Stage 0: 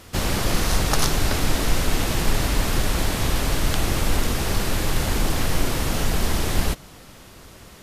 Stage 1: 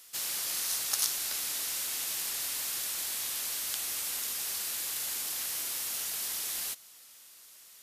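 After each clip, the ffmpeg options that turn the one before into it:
-af "aderivative,volume=0.75"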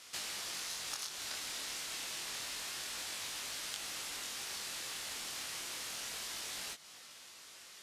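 -af "acompressor=threshold=0.01:ratio=6,flanger=delay=19.5:depth=6.6:speed=0.28,adynamicsmooth=sensitivity=5.5:basefreq=6300,volume=3.16"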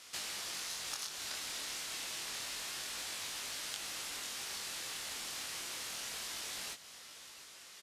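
-af "aecho=1:1:705:0.158"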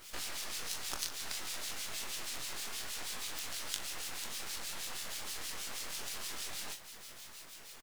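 -filter_complex "[0:a]acrusher=bits=6:dc=4:mix=0:aa=0.000001,acrossover=split=2100[s0][s1];[s0]aeval=exprs='val(0)*(1-0.7/2+0.7/2*cos(2*PI*6.3*n/s))':c=same[s2];[s1]aeval=exprs='val(0)*(1-0.7/2-0.7/2*cos(2*PI*6.3*n/s))':c=same[s3];[s2][s3]amix=inputs=2:normalize=0,asplit=2[s4][s5];[s5]adelay=41,volume=0.251[s6];[s4][s6]amix=inputs=2:normalize=0,volume=2.37"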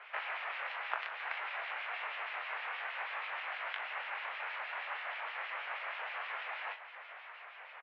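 -af "highpass=f=570:t=q:w=0.5412,highpass=f=570:t=q:w=1.307,lowpass=f=2400:t=q:w=0.5176,lowpass=f=2400:t=q:w=0.7071,lowpass=f=2400:t=q:w=1.932,afreqshift=66,volume=2.99"

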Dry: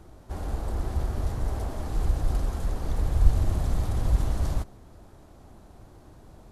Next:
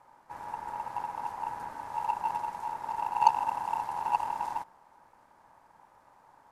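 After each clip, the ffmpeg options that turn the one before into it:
-af "aeval=exprs='val(0)*sin(2*PI*900*n/s)':c=same,aeval=exprs='0.562*(cos(1*acos(clip(val(0)/0.562,-1,1)))-cos(1*PI/2))+0.0355*(cos(7*acos(clip(val(0)/0.562,-1,1)))-cos(7*PI/2))':c=same,volume=0.75"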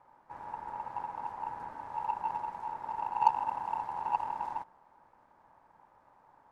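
-af "lowpass=f=1900:p=1,volume=0.794"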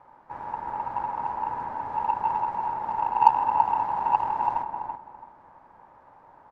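-filter_complex "[0:a]aemphasis=mode=reproduction:type=50fm,asplit=2[s0][s1];[s1]adelay=333,lowpass=f=1600:p=1,volume=0.631,asplit=2[s2][s3];[s3]adelay=333,lowpass=f=1600:p=1,volume=0.26,asplit=2[s4][s5];[s5]adelay=333,lowpass=f=1600:p=1,volume=0.26,asplit=2[s6][s7];[s7]adelay=333,lowpass=f=1600:p=1,volume=0.26[s8];[s0][s2][s4][s6][s8]amix=inputs=5:normalize=0,volume=2.51"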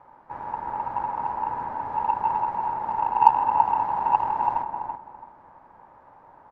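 -af "highshelf=f=3800:g=-6.5,volume=1.26"

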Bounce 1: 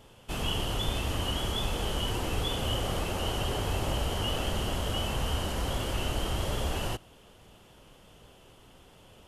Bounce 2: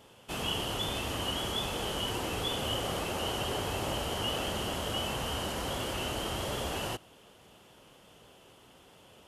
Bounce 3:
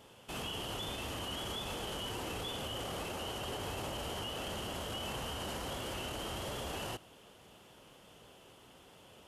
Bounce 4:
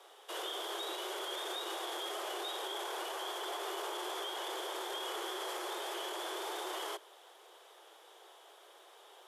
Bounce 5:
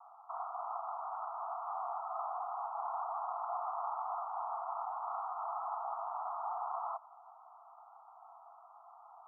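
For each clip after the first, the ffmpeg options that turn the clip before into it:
-af "highpass=f=180:p=1"
-af "alimiter=level_in=2.11:limit=0.0631:level=0:latency=1:release=23,volume=0.473,volume=0.891"
-af "afreqshift=300"
-af "asuperpass=centerf=950:order=20:qfactor=1.4,volume=1.88"

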